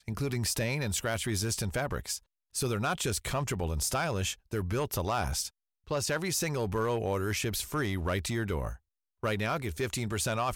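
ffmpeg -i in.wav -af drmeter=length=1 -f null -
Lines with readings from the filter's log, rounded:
Channel 1: DR: 4.7
Overall DR: 4.7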